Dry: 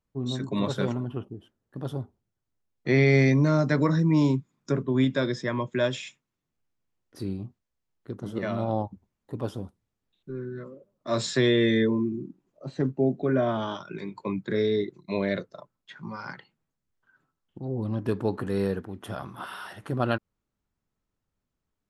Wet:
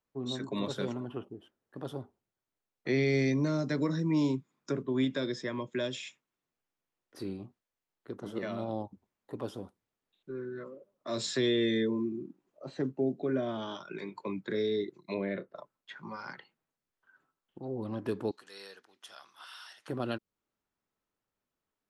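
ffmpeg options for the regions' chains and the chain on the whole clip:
-filter_complex "[0:a]asettb=1/sr,asplit=3[s0][s1][s2];[s0]atrim=end=15.144[s3];[s1]atrim=start=15.14:end=15.56,asetpts=PTS-STARTPTS,afade=t=in:d=0.004:c=qsin,afade=t=out:st=0.416:d=0.004:c=qsin,lowpass=f=2600:w=0.5412,lowpass=f=2600:w=1.3066,asplit=2[s4][s5];[s5]adelay=26,volume=0.224[s6];[s4][s6]amix=inputs=2:normalize=0,atrim=end_sample=18522[s7];[s2]atrim=start=15.556[s8];[s3][s7]acrossfade=d=0.004:c1=hsin:c2=qsin[s9];[s9][s8]acrossfade=d=0.004:c1=qsin:c2=hsin,asettb=1/sr,asplit=3[s10][s11][s12];[s10]atrim=end=18.314[s13];[s11]atrim=start=18.31:end=19.88,asetpts=PTS-STARTPTS,afade=t=in:d=0.004:c=qsin,afade=t=out:st=1.566:d=0.004:c=qsin,bandpass=f=5500:t=q:w=1.9,acontrast=38[s14];[s12]atrim=start=19.876[s15];[s13][s14]acrossfade=d=0.004:c1=hsin:c2=qsin[s16];[s16][s15]acrossfade=d=0.004:c1=qsin:c2=hsin,lowshelf=f=140:g=-8.5,acrossover=split=400|3000[s17][s18][s19];[s18]acompressor=threshold=0.01:ratio=4[s20];[s17][s20][s19]amix=inputs=3:normalize=0,bass=f=250:g=-7,treble=f=4000:g=-4"

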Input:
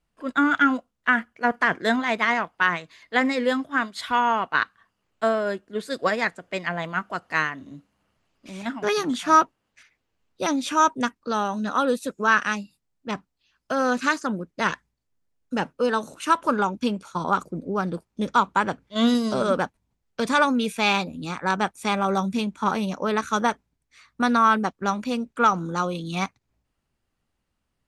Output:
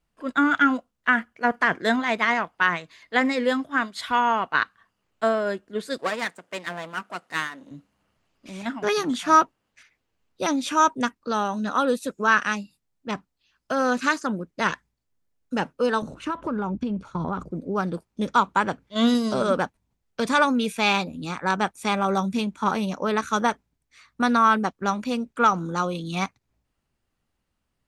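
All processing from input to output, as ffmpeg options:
-filter_complex "[0:a]asettb=1/sr,asplit=3[s0][s1][s2];[s0]atrim=end=5.984[s3];[s1]atrim=start=5.98:end=7.71,asetpts=PTS-STARTPTS,afade=t=in:d=0.004:c=qsin,afade=t=out:st=1.726:d=0.004:c=qsin,aeval=exprs='if(lt(val(0),0),0.251*val(0),val(0))':c=same,highpass=180,equalizer=f=8900:w=1.9:g=5.5[s4];[s2]atrim=start=7.706[s5];[s3][s4]acrossfade=d=0.004:c1=hsin:c2=qsin[s6];[s6][s5]acrossfade=d=0.004:c1=qsin:c2=hsin,asettb=1/sr,asplit=3[s7][s8][s9];[s7]atrim=end=16.024[s10];[s8]atrim=start=16.02:end=17.51,asetpts=PTS-STARTPTS,afade=t=in:d=0.004:c=qsin,afade=t=out:st=1.486:d=0.004:c=qsin,aemphasis=mode=reproduction:type=riaa,acompressor=threshold=0.0708:ratio=10:attack=3.2:release=140:knee=1:detection=peak[s11];[s9]atrim=start=17.506[s12];[s10][s11]acrossfade=d=0.004:c1=hsin:c2=qsin[s13];[s13][s12]acrossfade=d=0.004:c1=qsin:c2=hsin"

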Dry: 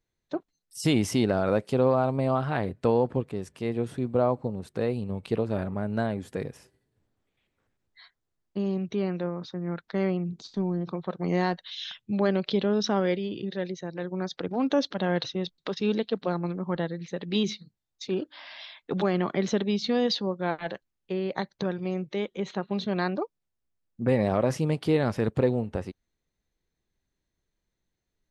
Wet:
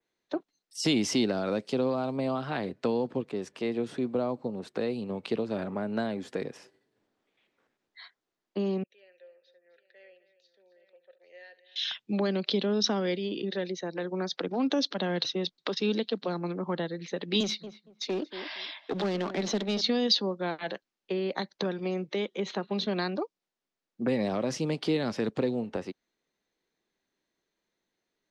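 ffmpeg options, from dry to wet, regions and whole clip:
-filter_complex "[0:a]asettb=1/sr,asplit=3[s0][s1][s2];[s0]atrim=end=8.834[s3];[s1]atrim=start=8.83:end=11.76,asetpts=PTS-STARTPTS,afade=t=in:d=0.004:c=qsin,afade=t=out:st=2.926:d=0.004:c=qsin,asplit=3[s4][s5][s6];[s4]bandpass=f=530:t=q:w=8,volume=1[s7];[s5]bandpass=f=1840:t=q:w=8,volume=0.501[s8];[s6]bandpass=f=2480:t=q:w=8,volume=0.355[s9];[s7][s8][s9]amix=inputs=3:normalize=0,aderivative,aecho=1:1:70|260|817:0.141|0.188|0.188,atrim=end_sample=129213[s10];[s2]atrim=start=11.756[s11];[s3][s10]acrossfade=d=0.004:c1=hsin:c2=qsin[s12];[s12][s11]acrossfade=d=0.004:c1=qsin:c2=hsin,asettb=1/sr,asplit=3[s13][s14][s15];[s13]atrim=end=17.404[s16];[s14]atrim=start=17.4:end=19.81,asetpts=PTS-STARTPTS,afade=t=in:d=0.004:c=qsin,afade=t=out:st=2.406:d=0.004:c=qsin,highpass=f=130:w=0.5412,highpass=f=130:w=1.3066,aeval=exprs='clip(val(0),-1,0.0266)':c=same,asplit=2[s17][s18];[s18]adelay=232,lowpass=f=1300:p=1,volume=0.211,asplit=2[s19][s20];[s20]adelay=232,lowpass=f=1300:p=1,volume=0.2[s21];[s17][s19][s21]amix=inputs=3:normalize=0,atrim=end_sample=106281[s22];[s15]atrim=start=19.806[s23];[s16][s22]acrossfade=d=0.004:c1=hsin:c2=qsin[s24];[s24][s23]acrossfade=d=0.004:c1=qsin:c2=hsin,acrossover=split=210 6800:gain=0.0708 1 0.158[s25][s26][s27];[s25][s26][s27]amix=inputs=3:normalize=0,acrossover=split=260|3000[s28][s29][s30];[s29]acompressor=threshold=0.0158:ratio=4[s31];[s28][s31][s30]amix=inputs=3:normalize=0,adynamicequalizer=threshold=0.00224:dfrequency=5200:dqfactor=1.7:tfrequency=5200:tqfactor=1.7:attack=5:release=100:ratio=0.375:range=1.5:mode=boostabove:tftype=bell,volume=1.68"

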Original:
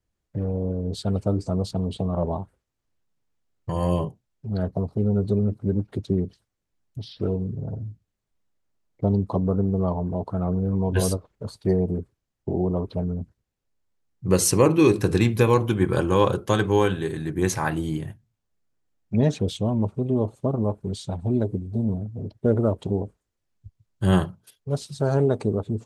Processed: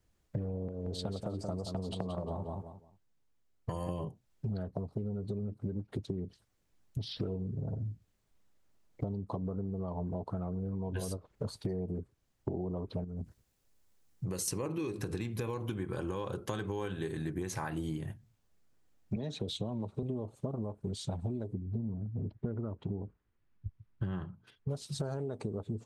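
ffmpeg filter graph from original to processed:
-filter_complex "[0:a]asettb=1/sr,asplit=3[s0][s1][s2];[s0]atrim=end=0.684[s3];[s1]atrim=start=0.68:end=3.89,asetpts=PTS-STARTPTS,afade=t=in:d=0.004:c=qsin,afade=t=out:st=3.206:d=0.004:c=qsin,agate=range=0.398:threshold=0.0158:ratio=16:release=100:detection=peak,acrossover=split=350|6000[s4][s5][s6];[s4]acompressor=threshold=0.02:ratio=4[s7];[s5]acompressor=threshold=0.0178:ratio=4[s8];[s6]acompressor=threshold=0.00224:ratio=4[s9];[s7][s8][s9]amix=inputs=3:normalize=0,aecho=1:1:177|354|531:0.422|0.0928|0.0204,atrim=end_sample=141561[s10];[s2]atrim=start=3.886[s11];[s3][s10]acrossfade=d=0.004:c1=hsin:c2=qsin[s12];[s12][s11]acrossfade=d=0.004:c1=qsin:c2=hsin,asettb=1/sr,asplit=3[s13][s14][s15];[s13]atrim=end=13.044[s16];[s14]atrim=start=13.04:end=14.48,asetpts=PTS-STARTPTS,afade=t=in:d=0.004:c=qsin,afade=t=out:st=1.436:d=0.004:c=qsin,highshelf=f=5000:g=8,acompressor=threshold=0.02:ratio=4:attack=3.2:release=140:knee=1:detection=peak[s17];[s15]atrim=start=14.476[s18];[s16][s17]acrossfade=d=0.004:c1=hsin:c2=qsin[s19];[s19][s18]acrossfade=d=0.004:c1=qsin:c2=hsin,asettb=1/sr,asplit=3[s20][s21][s22];[s20]atrim=end=19.164[s23];[s21]atrim=start=19.16:end=20.03,asetpts=PTS-STARTPTS,afade=t=in:d=0.004:c=qsin,afade=t=out:st=0.866:d=0.004:c=qsin,equalizer=f=3900:t=o:w=0.28:g=11.5,acrossover=split=150|310[s24][s25][s26];[s24]acompressor=threshold=0.0178:ratio=4[s27];[s25]acompressor=threshold=0.0224:ratio=4[s28];[s26]acompressor=threshold=0.0282:ratio=4[s29];[s27][s28][s29]amix=inputs=3:normalize=0[s30];[s22]atrim=start=20.026[s31];[s23][s30]acrossfade=d=0.004:c1=hsin:c2=qsin[s32];[s32][s31]acrossfade=d=0.004:c1=qsin:c2=hsin,asettb=1/sr,asplit=3[s33][s34][s35];[s33]atrim=end=21.534[s36];[s34]atrim=start=21.53:end=24.69,asetpts=PTS-STARTPTS,afade=t=in:d=0.004:c=qsin,afade=t=out:st=3.156:d=0.004:c=qsin,lowpass=2100,equalizer=f=590:w=1.3:g=-8[s37];[s35]atrim=start=24.686[s38];[s36][s37]acrossfade=d=0.004:c1=hsin:c2=qsin[s39];[s39][s38]acrossfade=d=0.004:c1=qsin:c2=hsin,alimiter=limit=0.178:level=0:latency=1:release=147,acompressor=threshold=0.0126:ratio=16,volume=1.88"

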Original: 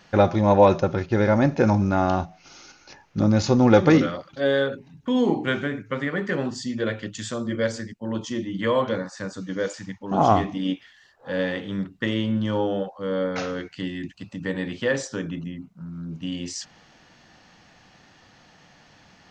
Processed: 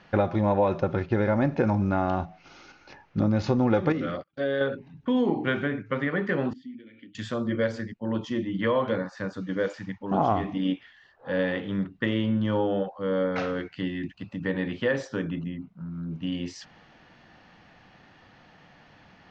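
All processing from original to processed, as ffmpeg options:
-filter_complex "[0:a]asettb=1/sr,asplit=3[s0][s1][s2];[s0]atrim=end=3.924[s3];[s1]atrim=start=3.92:end=4.61,asetpts=PTS-STARTPTS,afade=t=in:d=0.004:c=qsin,afade=t=out:st=0.686:d=0.004:c=qsin,agate=range=0.0398:threshold=0.01:ratio=16:release=100:detection=peak,equalizer=f=920:w=4.7:g=-8,acompressor=threshold=0.0708:ratio=3:attack=3.2:release=140:knee=1:detection=peak[s4];[s2]atrim=start=4.606[s5];[s3][s4]acrossfade=d=0.004:c1=hsin:c2=qsin[s6];[s6][s5]acrossfade=d=0.004:c1=qsin:c2=hsin,asettb=1/sr,asplit=3[s7][s8][s9];[s7]atrim=end=6.534[s10];[s8]atrim=start=6.53:end=7.15,asetpts=PTS-STARTPTS,afade=t=in:d=0.004:c=qsin,afade=t=out:st=0.616:d=0.004:c=qsin,acompressor=threshold=0.0316:ratio=12:attack=3.2:release=140:knee=1:detection=peak,asplit=3[s11][s12][s13];[s11]bandpass=f=270:t=q:w=8,volume=1[s14];[s12]bandpass=f=2290:t=q:w=8,volume=0.501[s15];[s13]bandpass=f=3010:t=q:w=8,volume=0.355[s16];[s14][s15][s16]amix=inputs=3:normalize=0[s17];[s9]atrim=start=7.146[s18];[s10][s17]acrossfade=d=0.004:c1=hsin:c2=qsin[s19];[s19][s18]acrossfade=d=0.004:c1=qsin:c2=hsin,lowpass=3100,acompressor=threshold=0.1:ratio=4"

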